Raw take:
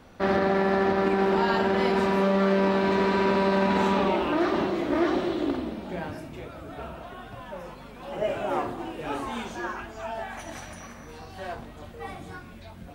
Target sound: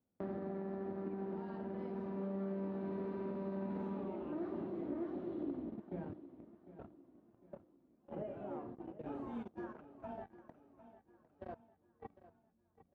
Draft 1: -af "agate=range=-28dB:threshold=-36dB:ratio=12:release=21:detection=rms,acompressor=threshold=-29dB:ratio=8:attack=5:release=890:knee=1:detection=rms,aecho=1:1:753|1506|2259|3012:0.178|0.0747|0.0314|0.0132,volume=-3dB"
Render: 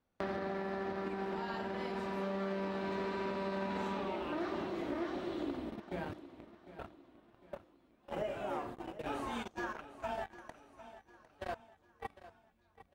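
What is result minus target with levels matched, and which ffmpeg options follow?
250 Hz band -3.0 dB
-af "agate=range=-28dB:threshold=-36dB:ratio=12:release=21:detection=rms,acompressor=threshold=-29dB:ratio=8:attack=5:release=890:knee=1:detection=rms,bandpass=f=210:t=q:w=0.78:csg=0,aecho=1:1:753|1506|2259|3012:0.178|0.0747|0.0314|0.0132,volume=-3dB"

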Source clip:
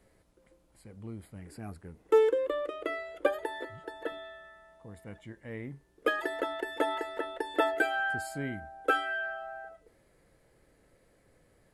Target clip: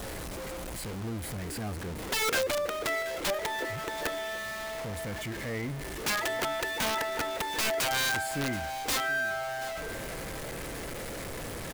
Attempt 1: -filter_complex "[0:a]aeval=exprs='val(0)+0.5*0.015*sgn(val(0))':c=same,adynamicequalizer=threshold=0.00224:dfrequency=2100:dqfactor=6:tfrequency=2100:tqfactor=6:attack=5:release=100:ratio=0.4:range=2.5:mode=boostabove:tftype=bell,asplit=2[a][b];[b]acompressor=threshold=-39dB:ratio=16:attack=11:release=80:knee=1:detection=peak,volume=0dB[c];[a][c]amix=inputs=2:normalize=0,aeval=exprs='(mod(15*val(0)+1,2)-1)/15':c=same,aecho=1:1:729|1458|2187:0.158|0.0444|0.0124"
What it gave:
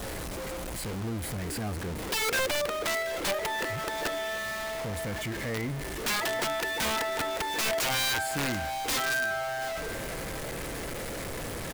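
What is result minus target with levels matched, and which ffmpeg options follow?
compressor: peak gain reduction -7.5 dB
-filter_complex "[0:a]aeval=exprs='val(0)+0.5*0.015*sgn(val(0))':c=same,adynamicequalizer=threshold=0.00224:dfrequency=2100:dqfactor=6:tfrequency=2100:tqfactor=6:attack=5:release=100:ratio=0.4:range=2.5:mode=boostabove:tftype=bell,asplit=2[a][b];[b]acompressor=threshold=-47dB:ratio=16:attack=11:release=80:knee=1:detection=peak,volume=0dB[c];[a][c]amix=inputs=2:normalize=0,aeval=exprs='(mod(15*val(0)+1,2)-1)/15':c=same,aecho=1:1:729|1458|2187:0.158|0.0444|0.0124"

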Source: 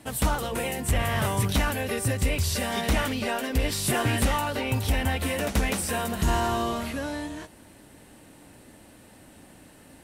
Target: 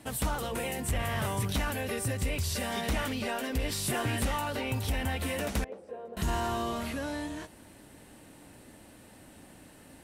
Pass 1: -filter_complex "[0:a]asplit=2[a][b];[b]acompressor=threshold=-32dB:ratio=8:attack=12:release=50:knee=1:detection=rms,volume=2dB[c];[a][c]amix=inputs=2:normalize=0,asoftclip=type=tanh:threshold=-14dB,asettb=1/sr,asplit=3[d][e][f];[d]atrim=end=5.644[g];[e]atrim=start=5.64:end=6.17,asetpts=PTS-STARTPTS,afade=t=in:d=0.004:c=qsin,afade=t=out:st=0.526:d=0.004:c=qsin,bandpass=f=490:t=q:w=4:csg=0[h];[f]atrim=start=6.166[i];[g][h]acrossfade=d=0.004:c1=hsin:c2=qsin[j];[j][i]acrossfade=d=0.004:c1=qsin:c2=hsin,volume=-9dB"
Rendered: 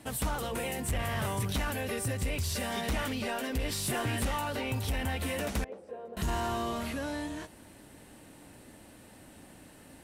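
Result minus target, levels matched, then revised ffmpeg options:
soft clip: distortion +17 dB
-filter_complex "[0:a]asplit=2[a][b];[b]acompressor=threshold=-32dB:ratio=8:attack=12:release=50:knee=1:detection=rms,volume=2dB[c];[a][c]amix=inputs=2:normalize=0,asoftclip=type=tanh:threshold=-4.5dB,asettb=1/sr,asplit=3[d][e][f];[d]atrim=end=5.644[g];[e]atrim=start=5.64:end=6.17,asetpts=PTS-STARTPTS,afade=t=in:d=0.004:c=qsin,afade=t=out:st=0.526:d=0.004:c=qsin,bandpass=f=490:t=q:w=4:csg=0[h];[f]atrim=start=6.166[i];[g][h]acrossfade=d=0.004:c1=hsin:c2=qsin[j];[j][i]acrossfade=d=0.004:c1=qsin:c2=hsin,volume=-9dB"

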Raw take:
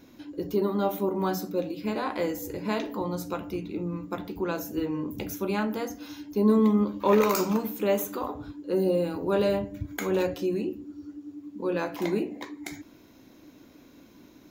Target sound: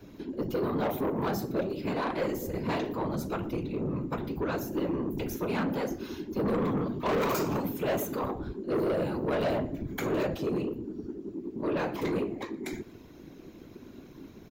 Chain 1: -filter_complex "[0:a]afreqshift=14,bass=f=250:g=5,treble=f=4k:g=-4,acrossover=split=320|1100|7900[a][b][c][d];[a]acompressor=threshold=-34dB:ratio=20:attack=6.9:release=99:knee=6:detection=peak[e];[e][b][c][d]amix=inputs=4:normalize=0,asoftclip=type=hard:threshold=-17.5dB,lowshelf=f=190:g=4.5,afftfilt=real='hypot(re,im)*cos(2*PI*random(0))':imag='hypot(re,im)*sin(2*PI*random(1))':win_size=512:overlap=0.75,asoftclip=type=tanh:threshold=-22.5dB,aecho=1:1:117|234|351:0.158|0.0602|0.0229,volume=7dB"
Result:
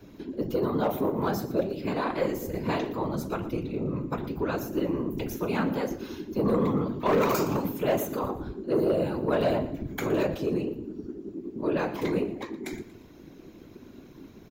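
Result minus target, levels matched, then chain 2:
soft clip: distortion -9 dB; echo-to-direct +6 dB
-filter_complex "[0:a]afreqshift=14,bass=f=250:g=5,treble=f=4k:g=-4,acrossover=split=320|1100|7900[a][b][c][d];[a]acompressor=threshold=-34dB:ratio=20:attack=6.9:release=99:knee=6:detection=peak[e];[e][b][c][d]amix=inputs=4:normalize=0,asoftclip=type=hard:threshold=-17.5dB,lowshelf=f=190:g=4.5,afftfilt=real='hypot(re,im)*cos(2*PI*random(0))':imag='hypot(re,im)*sin(2*PI*random(1))':win_size=512:overlap=0.75,asoftclip=type=tanh:threshold=-31dB,aecho=1:1:117|234:0.0631|0.024,volume=7dB"

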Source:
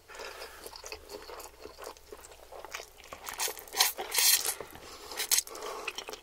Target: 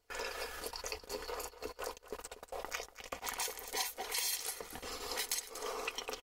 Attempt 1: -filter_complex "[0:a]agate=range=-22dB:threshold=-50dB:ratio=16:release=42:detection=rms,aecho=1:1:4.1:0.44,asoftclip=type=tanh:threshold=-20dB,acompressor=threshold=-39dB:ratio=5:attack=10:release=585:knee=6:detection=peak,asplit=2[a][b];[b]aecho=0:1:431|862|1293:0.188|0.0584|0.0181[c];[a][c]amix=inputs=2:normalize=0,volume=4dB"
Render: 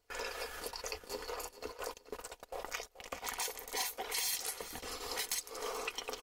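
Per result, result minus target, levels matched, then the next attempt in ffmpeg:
echo 0.192 s late; soft clip: distortion +7 dB
-filter_complex "[0:a]agate=range=-22dB:threshold=-50dB:ratio=16:release=42:detection=rms,aecho=1:1:4.1:0.44,asoftclip=type=tanh:threshold=-20dB,acompressor=threshold=-39dB:ratio=5:attack=10:release=585:knee=6:detection=peak,asplit=2[a][b];[b]aecho=0:1:239|478|717:0.188|0.0584|0.0181[c];[a][c]amix=inputs=2:normalize=0,volume=4dB"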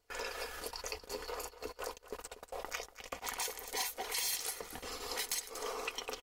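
soft clip: distortion +7 dB
-filter_complex "[0:a]agate=range=-22dB:threshold=-50dB:ratio=16:release=42:detection=rms,aecho=1:1:4.1:0.44,asoftclip=type=tanh:threshold=-13.5dB,acompressor=threshold=-39dB:ratio=5:attack=10:release=585:knee=6:detection=peak,asplit=2[a][b];[b]aecho=0:1:239|478|717:0.188|0.0584|0.0181[c];[a][c]amix=inputs=2:normalize=0,volume=4dB"

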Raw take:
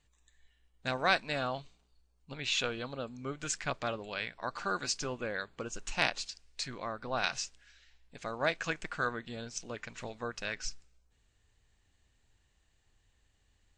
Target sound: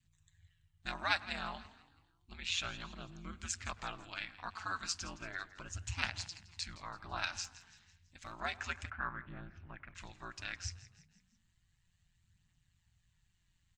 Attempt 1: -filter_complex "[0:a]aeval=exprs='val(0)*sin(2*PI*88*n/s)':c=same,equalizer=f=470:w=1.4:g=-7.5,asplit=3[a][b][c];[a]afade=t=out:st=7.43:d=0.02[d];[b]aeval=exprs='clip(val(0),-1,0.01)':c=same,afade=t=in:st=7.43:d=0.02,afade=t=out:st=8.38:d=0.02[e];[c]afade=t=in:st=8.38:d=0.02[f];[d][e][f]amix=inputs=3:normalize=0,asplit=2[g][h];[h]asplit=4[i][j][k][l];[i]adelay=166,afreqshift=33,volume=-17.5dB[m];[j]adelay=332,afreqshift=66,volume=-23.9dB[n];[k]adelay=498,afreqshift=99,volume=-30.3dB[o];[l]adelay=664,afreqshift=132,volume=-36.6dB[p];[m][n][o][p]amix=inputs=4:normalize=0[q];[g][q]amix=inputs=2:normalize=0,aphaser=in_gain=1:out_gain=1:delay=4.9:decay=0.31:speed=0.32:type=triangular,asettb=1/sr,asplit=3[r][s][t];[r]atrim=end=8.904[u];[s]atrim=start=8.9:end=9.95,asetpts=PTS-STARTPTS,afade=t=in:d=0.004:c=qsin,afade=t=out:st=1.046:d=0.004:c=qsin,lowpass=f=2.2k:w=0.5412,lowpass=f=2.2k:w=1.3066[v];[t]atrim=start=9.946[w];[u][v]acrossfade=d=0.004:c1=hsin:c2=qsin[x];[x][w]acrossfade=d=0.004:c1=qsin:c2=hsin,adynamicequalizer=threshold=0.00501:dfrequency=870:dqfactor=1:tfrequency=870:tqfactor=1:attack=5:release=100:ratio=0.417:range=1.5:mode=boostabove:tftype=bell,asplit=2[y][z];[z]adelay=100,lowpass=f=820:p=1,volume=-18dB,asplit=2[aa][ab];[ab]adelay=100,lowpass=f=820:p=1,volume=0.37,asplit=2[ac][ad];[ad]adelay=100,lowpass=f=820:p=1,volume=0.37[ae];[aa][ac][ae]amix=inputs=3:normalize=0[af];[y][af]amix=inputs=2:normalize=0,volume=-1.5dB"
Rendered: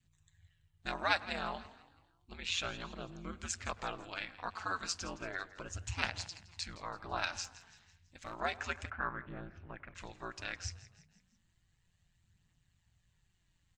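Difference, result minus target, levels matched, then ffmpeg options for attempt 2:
500 Hz band +6.0 dB
-filter_complex "[0:a]aeval=exprs='val(0)*sin(2*PI*88*n/s)':c=same,equalizer=f=470:w=1.4:g=-19,asplit=3[a][b][c];[a]afade=t=out:st=7.43:d=0.02[d];[b]aeval=exprs='clip(val(0),-1,0.01)':c=same,afade=t=in:st=7.43:d=0.02,afade=t=out:st=8.38:d=0.02[e];[c]afade=t=in:st=8.38:d=0.02[f];[d][e][f]amix=inputs=3:normalize=0,asplit=2[g][h];[h]asplit=4[i][j][k][l];[i]adelay=166,afreqshift=33,volume=-17.5dB[m];[j]adelay=332,afreqshift=66,volume=-23.9dB[n];[k]adelay=498,afreqshift=99,volume=-30.3dB[o];[l]adelay=664,afreqshift=132,volume=-36.6dB[p];[m][n][o][p]amix=inputs=4:normalize=0[q];[g][q]amix=inputs=2:normalize=0,aphaser=in_gain=1:out_gain=1:delay=4.9:decay=0.31:speed=0.32:type=triangular,asettb=1/sr,asplit=3[r][s][t];[r]atrim=end=8.904[u];[s]atrim=start=8.9:end=9.95,asetpts=PTS-STARTPTS,afade=t=in:d=0.004:c=qsin,afade=t=out:st=1.046:d=0.004:c=qsin,lowpass=f=2.2k:w=0.5412,lowpass=f=2.2k:w=1.3066[v];[t]atrim=start=9.946[w];[u][v]acrossfade=d=0.004:c1=hsin:c2=qsin[x];[x][w]acrossfade=d=0.004:c1=qsin:c2=hsin,adynamicequalizer=threshold=0.00501:dfrequency=870:dqfactor=1:tfrequency=870:tqfactor=1:attack=5:release=100:ratio=0.417:range=1.5:mode=boostabove:tftype=bell,asplit=2[y][z];[z]adelay=100,lowpass=f=820:p=1,volume=-18dB,asplit=2[aa][ab];[ab]adelay=100,lowpass=f=820:p=1,volume=0.37,asplit=2[ac][ad];[ad]adelay=100,lowpass=f=820:p=1,volume=0.37[ae];[aa][ac][ae]amix=inputs=3:normalize=0[af];[y][af]amix=inputs=2:normalize=0,volume=-1.5dB"

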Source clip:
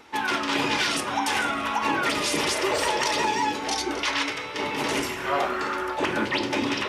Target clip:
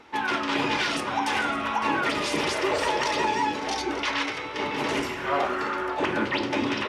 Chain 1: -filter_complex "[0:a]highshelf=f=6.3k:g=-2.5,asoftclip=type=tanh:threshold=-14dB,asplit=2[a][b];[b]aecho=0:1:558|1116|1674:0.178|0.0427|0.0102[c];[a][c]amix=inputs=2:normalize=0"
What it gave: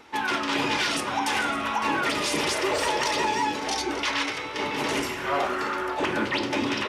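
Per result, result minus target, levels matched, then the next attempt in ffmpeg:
soft clip: distortion +18 dB; 8000 Hz band +4.5 dB
-filter_complex "[0:a]highshelf=f=6.3k:g=-2.5,asoftclip=type=tanh:threshold=-4.5dB,asplit=2[a][b];[b]aecho=0:1:558|1116|1674:0.178|0.0427|0.0102[c];[a][c]amix=inputs=2:normalize=0"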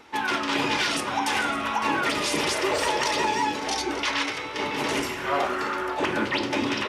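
8000 Hz band +4.5 dB
-filter_complex "[0:a]highshelf=f=6.3k:g=-12.5,asoftclip=type=tanh:threshold=-4.5dB,asplit=2[a][b];[b]aecho=0:1:558|1116|1674:0.178|0.0427|0.0102[c];[a][c]amix=inputs=2:normalize=0"

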